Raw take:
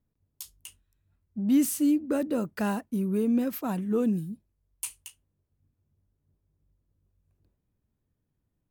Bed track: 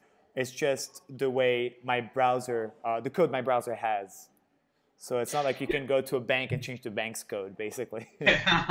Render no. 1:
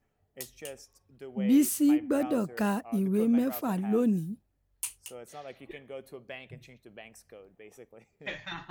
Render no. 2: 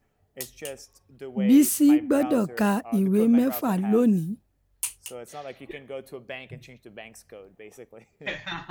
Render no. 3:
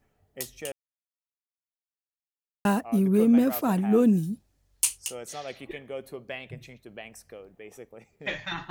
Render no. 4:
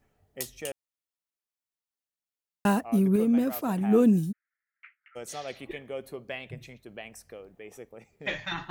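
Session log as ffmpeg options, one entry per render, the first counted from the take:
ffmpeg -i in.wav -i bed.wav -filter_complex "[1:a]volume=-15.5dB[link_01];[0:a][link_01]amix=inputs=2:normalize=0" out.wav
ffmpeg -i in.wav -af "volume=5.5dB" out.wav
ffmpeg -i in.wav -filter_complex "[0:a]asettb=1/sr,asplit=3[link_01][link_02][link_03];[link_01]atrim=end=4.234[link_04];[link_02]atrim=start=4.23:end=5.65,asetpts=PTS-STARTPTS,afade=type=in:duration=0.004:curve=qsin,afade=type=out:start_time=1.416:duration=0.004:curve=qsin,equalizer=frequency=5800:width=0.64:gain=9[link_05];[link_03]atrim=start=5.646[link_06];[link_04][link_05]acrossfade=duration=0.004:curve1=hsin:curve2=qsin[link_07];[link_07][link_06]acrossfade=duration=0.004:curve1=qsin:curve2=hsin,asplit=3[link_08][link_09][link_10];[link_08]atrim=end=0.72,asetpts=PTS-STARTPTS,afade=type=out:start_time=0.716:duration=0.004:curve=hsin[link_11];[link_09]atrim=start=0.72:end=2.65,asetpts=PTS-STARTPTS,volume=0[link_12];[link_10]atrim=start=2.65,asetpts=PTS-STARTPTS,afade=type=in:duration=0.004:curve=hsin[link_13];[link_11][link_12][link_13]concat=n=3:v=0:a=1" out.wav
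ffmpeg -i in.wav -filter_complex "[0:a]asplit=3[link_01][link_02][link_03];[link_01]afade=type=out:start_time=4.31:duration=0.02[link_04];[link_02]asuperpass=centerf=1700:order=8:qfactor=2,afade=type=in:start_time=4.31:duration=0.02,afade=type=out:start_time=5.15:duration=0.02[link_05];[link_03]afade=type=in:start_time=5.15:duration=0.02[link_06];[link_04][link_05][link_06]amix=inputs=3:normalize=0,asplit=3[link_07][link_08][link_09];[link_07]atrim=end=3.162[link_10];[link_08]atrim=start=3.158:end=3.812,asetpts=PTS-STARTPTS,volume=-4dB[link_11];[link_09]atrim=start=3.808[link_12];[link_10][link_11]acrossfade=duration=0.004:curve1=hsin:curve2=hsin[link_13];[link_13][link_12]acrossfade=duration=0.004:curve1=hsin:curve2=hsin" out.wav

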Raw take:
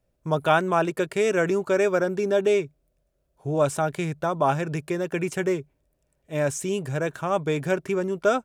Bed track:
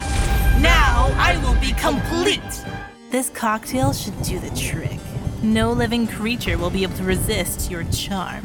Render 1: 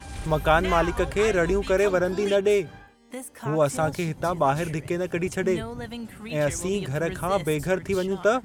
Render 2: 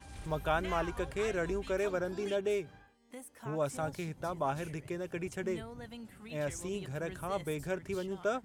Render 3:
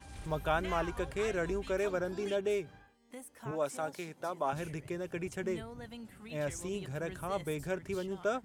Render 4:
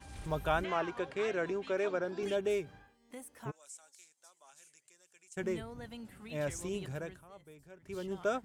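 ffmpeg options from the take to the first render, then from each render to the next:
ffmpeg -i in.wav -i bed.wav -filter_complex "[1:a]volume=-15.5dB[link_01];[0:a][link_01]amix=inputs=2:normalize=0" out.wav
ffmpeg -i in.wav -af "volume=-11.5dB" out.wav
ffmpeg -i in.wav -filter_complex "[0:a]asettb=1/sr,asplit=3[link_01][link_02][link_03];[link_01]atrim=end=3.514[link_04];[link_02]atrim=start=3.51:end=4.53,asetpts=PTS-STARTPTS,afade=type=in:duration=0.004:curve=qsin,afade=type=out:start_time=1.016:duration=0.004:curve=qsin,highpass=270[link_05];[link_03]atrim=start=4.526[link_06];[link_04][link_05]acrossfade=duration=0.004:curve1=hsin:curve2=qsin[link_07];[link_07][link_06]acrossfade=duration=0.004:curve1=qsin:curve2=hsin" out.wav
ffmpeg -i in.wav -filter_complex "[0:a]asettb=1/sr,asplit=3[link_01][link_02][link_03];[link_01]atrim=end=0.644[link_04];[link_02]atrim=start=0.64:end=2.23,asetpts=PTS-STARTPTS,afade=type=in:duration=0.004:curve=qsin,afade=type=out:start_time=1.586:duration=0.004:curve=qsin,highpass=210,lowpass=5000[link_05];[link_03]atrim=start=2.226[link_06];[link_04][link_05]acrossfade=duration=0.004:curve1=hsin:curve2=qsin[link_07];[link_07][link_06]acrossfade=duration=0.004:curve1=qsin:curve2=hsin,asplit=3[link_08][link_09][link_10];[link_08]afade=type=out:start_time=3.5:duration=0.02[link_11];[link_09]bandpass=frequency=7500:width_type=q:width=2.6,afade=type=in:start_time=3.5:duration=0.02,afade=type=out:start_time=5.36:duration=0.02[link_12];[link_10]afade=type=in:start_time=5.36:duration=0.02[link_13];[link_11][link_12][link_13]amix=inputs=3:normalize=0,asplit=3[link_14][link_15][link_16];[link_14]atrim=end=7.24,asetpts=PTS-STARTPTS,afade=type=out:start_time=6.9:duration=0.34:silence=0.112202[link_17];[link_15]atrim=start=7.24:end=7.78,asetpts=PTS-STARTPTS,volume=-19dB[link_18];[link_16]atrim=start=7.78,asetpts=PTS-STARTPTS,afade=type=in:duration=0.34:silence=0.112202[link_19];[link_17][link_18][link_19]concat=n=3:v=0:a=1" out.wav

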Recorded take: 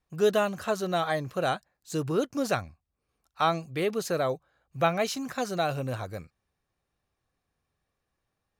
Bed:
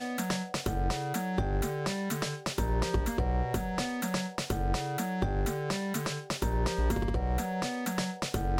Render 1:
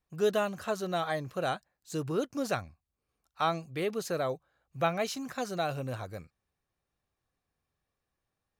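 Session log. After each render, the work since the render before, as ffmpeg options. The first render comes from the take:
ffmpeg -i in.wav -af "volume=-4dB" out.wav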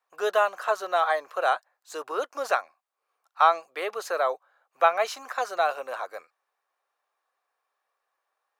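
ffmpeg -i in.wav -af "highpass=frequency=460:width=0.5412,highpass=frequency=460:width=1.3066,equalizer=frequency=1100:width_type=o:width=1.9:gain=12" out.wav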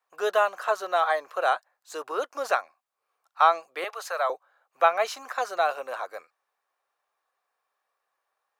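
ffmpeg -i in.wav -filter_complex "[0:a]asettb=1/sr,asplit=3[link_01][link_02][link_03];[link_01]atrim=end=3.844[link_04];[link_02]atrim=start=3.84:end=4.3,asetpts=PTS-STARTPTS,afade=type=in:duration=0.004:curve=qsin,afade=type=out:start_time=0.456:duration=0.004:curve=qsin,highpass=frequency=590:width=0.5412,highpass=frequency=590:width=1.3066[link_05];[link_03]atrim=start=4.296[link_06];[link_04][link_05]acrossfade=duration=0.004:curve1=hsin:curve2=qsin[link_07];[link_07][link_06]acrossfade=duration=0.004:curve1=qsin:curve2=hsin" out.wav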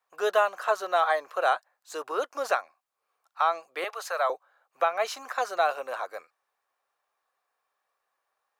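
ffmpeg -i in.wav -af "alimiter=limit=-12dB:level=0:latency=1:release=267" out.wav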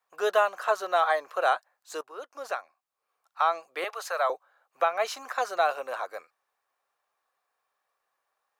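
ffmpeg -i in.wav -filter_complex "[0:a]asplit=2[link_01][link_02];[link_01]atrim=end=2.01,asetpts=PTS-STARTPTS,afade=type=out:start_time=2.006:duration=0.004:curve=hsin:silence=0.158489[link_03];[link_02]atrim=start=2.01,asetpts=PTS-STARTPTS,afade=type=in:duration=1.4:silence=0.158489[link_04];[link_03][link_04]concat=n=2:v=0:a=1" out.wav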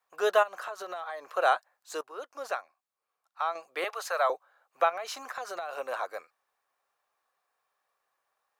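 ffmpeg -i in.wav -filter_complex "[0:a]asplit=3[link_01][link_02][link_03];[link_01]afade=type=out:start_time=0.42:duration=0.02[link_04];[link_02]acompressor=threshold=-34dB:ratio=8:attack=3.2:release=140:knee=1:detection=peak,afade=type=in:start_time=0.42:duration=0.02,afade=type=out:start_time=1.32:duration=0.02[link_05];[link_03]afade=type=in:start_time=1.32:duration=0.02[link_06];[link_04][link_05][link_06]amix=inputs=3:normalize=0,asettb=1/sr,asplit=3[link_07][link_08][link_09];[link_07]atrim=end=4.894[link_10];[link_08]atrim=start=4.89:end=5.73,asetpts=PTS-STARTPTS,afade=type=in:duration=0.004:curve=qsin,afade=type=out:start_time=0.836:duration=0.004:curve=qsin,acompressor=threshold=-32dB:ratio=12:attack=3.2:release=140:knee=1:detection=peak[link_11];[link_09]atrim=start=5.726[link_12];[link_10][link_11]acrossfade=duration=0.004:curve1=hsin:curve2=qsin[link_13];[link_13][link_12]acrossfade=duration=0.004:curve1=qsin:curve2=hsin,asplit=2[link_14][link_15];[link_14]atrim=end=3.55,asetpts=PTS-STARTPTS,afade=type=out:start_time=2.45:duration=1.1:curve=qua:silence=0.473151[link_16];[link_15]atrim=start=3.55,asetpts=PTS-STARTPTS,afade=type=in:duration=0.004:curve=hsin:silence=0.473151[link_17];[link_16][link_17]concat=n=2:v=0:a=1" out.wav

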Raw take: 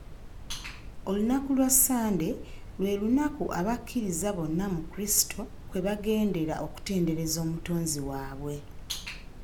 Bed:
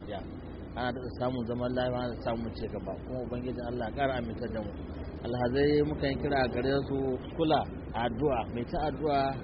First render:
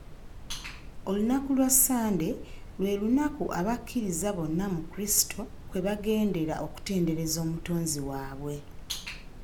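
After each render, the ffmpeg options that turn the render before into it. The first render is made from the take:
ffmpeg -i in.wav -af "bandreject=frequency=50:width_type=h:width=4,bandreject=frequency=100:width_type=h:width=4" out.wav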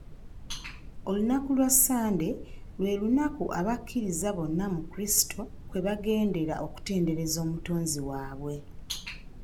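ffmpeg -i in.wav -af "afftdn=noise_reduction=7:noise_floor=-46" out.wav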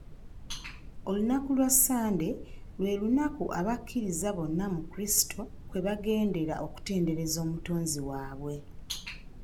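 ffmpeg -i in.wav -af "volume=-1.5dB" out.wav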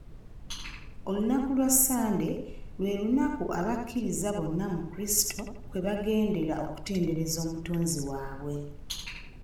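ffmpeg -i in.wav -filter_complex "[0:a]asplit=2[link_01][link_02];[link_02]adelay=83,lowpass=frequency=4900:poles=1,volume=-4.5dB,asplit=2[link_03][link_04];[link_04]adelay=83,lowpass=frequency=4900:poles=1,volume=0.38,asplit=2[link_05][link_06];[link_06]adelay=83,lowpass=frequency=4900:poles=1,volume=0.38,asplit=2[link_07][link_08];[link_08]adelay=83,lowpass=frequency=4900:poles=1,volume=0.38,asplit=2[link_09][link_10];[link_10]adelay=83,lowpass=frequency=4900:poles=1,volume=0.38[link_11];[link_01][link_03][link_05][link_07][link_09][link_11]amix=inputs=6:normalize=0" out.wav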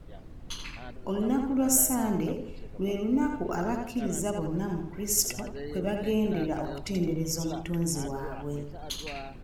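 ffmpeg -i in.wav -i bed.wav -filter_complex "[1:a]volume=-13dB[link_01];[0:a][link_01]amix=inputs=2:normalize=0" out.wav

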